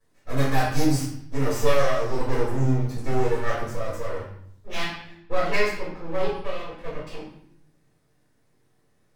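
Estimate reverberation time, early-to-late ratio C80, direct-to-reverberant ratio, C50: 0.70 s, 6.0 dB, -9.0 dB, 2.5 dB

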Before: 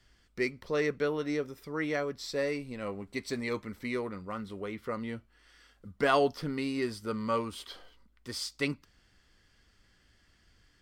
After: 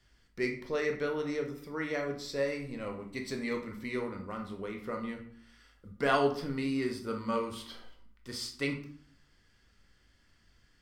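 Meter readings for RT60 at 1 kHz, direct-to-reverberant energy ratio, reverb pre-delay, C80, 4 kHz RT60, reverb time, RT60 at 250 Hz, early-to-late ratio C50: 0.55 s, 3.0 dB, 3 ms, 12.5 dB, 0.35 s, 0.60 s, 0.80 s, 8.5 dB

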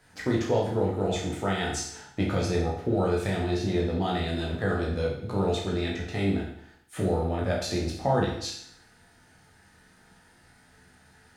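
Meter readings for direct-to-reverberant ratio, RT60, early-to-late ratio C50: -3.5 dB, 0.70 s, 4.0 dB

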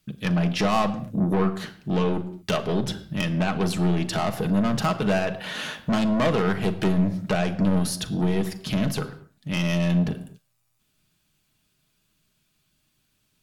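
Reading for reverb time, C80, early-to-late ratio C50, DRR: no single decay rate, 15.5 dB, 14.0 dB, 5.5 dB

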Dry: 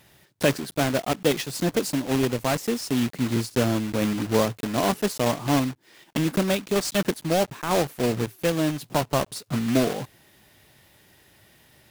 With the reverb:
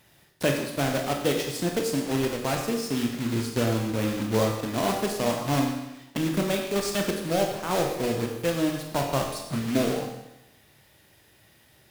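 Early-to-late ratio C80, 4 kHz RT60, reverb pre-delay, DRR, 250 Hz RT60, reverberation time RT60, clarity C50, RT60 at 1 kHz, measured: 6.5 dB, 0.90 s, 24 ms, 2.0 dB, 0.90 s, 0.90 s, 4.5 dB, 0.90 s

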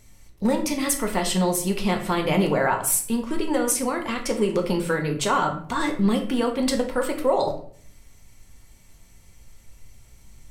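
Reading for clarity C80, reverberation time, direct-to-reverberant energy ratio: 12.5 dB, 0.55 s, 2.5 dB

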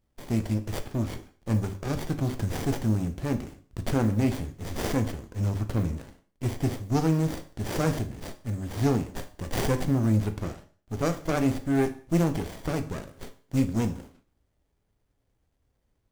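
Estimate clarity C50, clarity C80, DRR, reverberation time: 13.5 dB, 18.0 dB, 8.0 dB, 0.45 s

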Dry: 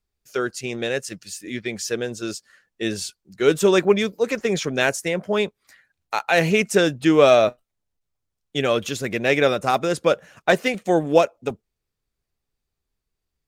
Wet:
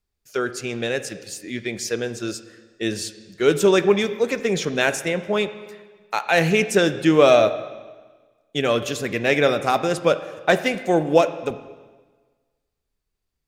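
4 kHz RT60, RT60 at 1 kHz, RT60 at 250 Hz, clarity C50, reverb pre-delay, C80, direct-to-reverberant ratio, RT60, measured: 1.3 s, 1.4 s, 1.4 s, 12.5 dB, 6 ms, 14.0 dB, 11.0 dB, 1.4 s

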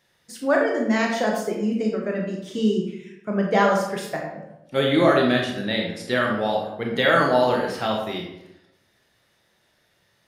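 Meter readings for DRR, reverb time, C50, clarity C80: -0.5 dB, 0.85 s, 3.0 dB, 6.0 dB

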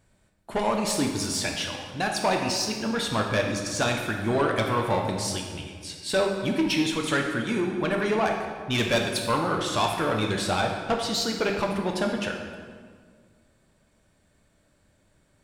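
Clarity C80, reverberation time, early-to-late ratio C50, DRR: 5.5 dB, 1.8 s, 4.0 dB, 1.5 dB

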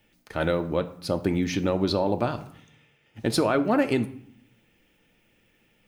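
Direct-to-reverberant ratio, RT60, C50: 7.5 dB, 0.60 s, 14.5 dB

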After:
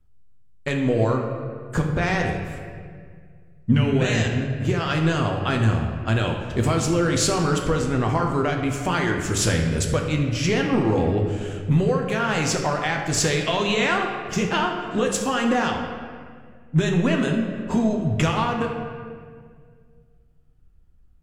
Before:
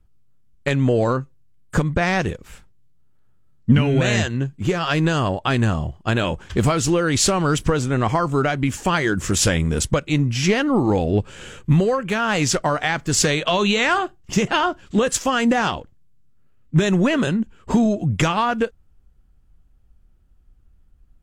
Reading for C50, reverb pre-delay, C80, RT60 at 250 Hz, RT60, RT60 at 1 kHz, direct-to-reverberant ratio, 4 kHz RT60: 4.0 dB, 8 ms, 6.0 dB, 2.3 s, 1.9 s, 1.7 s, 1.5 dB, 1.3 s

